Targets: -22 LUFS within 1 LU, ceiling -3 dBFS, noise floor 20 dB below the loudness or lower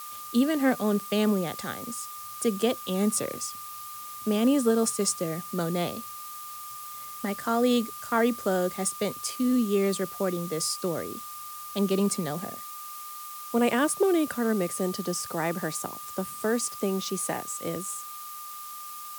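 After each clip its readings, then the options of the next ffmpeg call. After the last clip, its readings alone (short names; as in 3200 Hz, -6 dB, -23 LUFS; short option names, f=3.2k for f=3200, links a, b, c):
steady tone 1200 Hz; tone level -40 dBFS; noise floor -40 dBFS; noise floor target -49 dBFS; loudness -28.5 LUFS; peak -11.0 dBFS; loudness target -22.0 LUFS
-> -af "bandreject=f=1.2k:w=30"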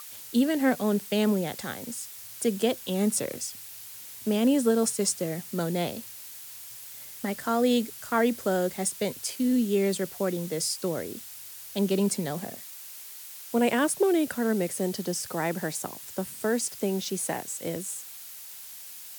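steady tone none; noise floor -44 dBFS; noise floor target -48 dBFS
-> -af "afftdn=nr=6:nf=-44"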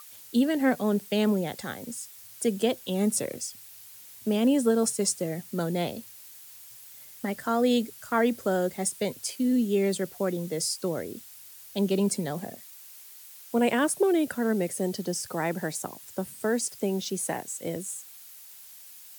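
noise floor -48 dBFS; loudness -28.0 LUFS; peak -11.5 dBFS; loudness target -22.0 LUFS
-> -af "volume=6dB"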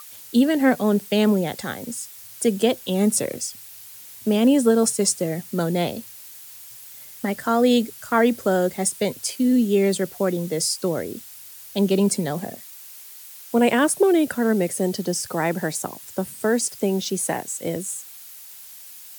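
loudness -22.0 LUFS; peak -5.5 dBFS; noise floor -42 dBFS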